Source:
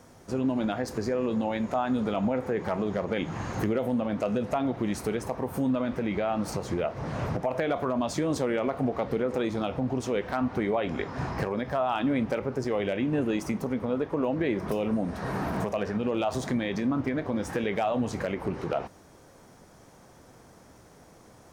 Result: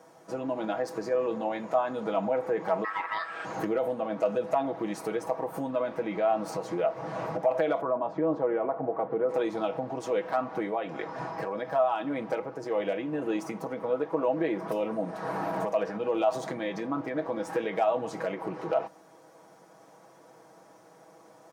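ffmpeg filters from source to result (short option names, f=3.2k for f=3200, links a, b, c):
-filter_complex "[0:a]asettb=1/sr,asplit=3[a][b][c];[a]atrim=end=2.844[d];[b]atrim=start=2.84:end=3.45,asetpts=PTS-STARTPTS,afade=t=in:d=0.004:c=qsin,afade=t=out:st=0.606:d=0.004:c=qsin,aeval=exprs='val(0)*sin(2*PI*1500*n/s)':c=same[e];[c]atrim=start=3.446[f];[d][e]acrossfade=d=0.004:c1=hsin:c2=qsin[g];[g][f]acrossfade=d=0.004:c1=qsin:c2=hsin,asettb=1/sr,asplit=3[h][i][j];[h]atrim=end=7.814[k];[i]atrim=start=7.81:end=9.29,asetpts=PTS-STARTPTS,afade=t=in:d=0.004:c=qsin,afade=t=out:st=1.476:d=0.004:c=qsin,lowpass=1.3k[l];[j]atrim=start=9.286[m];[k][l]acrossfade=d=0.004:c1=hsin:c2=qsin[n];[n][m]acrossfade=d=0.004:c1=qsin:c2=hsin,asettb=1/sr,asplit=3[o][p][q];[o]atrim=end=10.514[r];[p]atrim=start=10.51:end=13.22,asetpts=PTS-STARTPTS,afade=t=in:d=0.004:c=qsin,afade=t=out:st=2.706:d=0.004:c=qsin,tremolo=f=1.7:d=0.3[s];[q]atrim=start=13.216[t];[r][s]acrossfade=d=0.004:c1=hsin:c2=qsin[u];[u][t]acrossfade=d=0.004:c1=qsin:c2=hsin,highpass=190,equalizer=f=750:w=0.72:g=8.5,aecho=1:1:6.2:0.67,volume=-7dB"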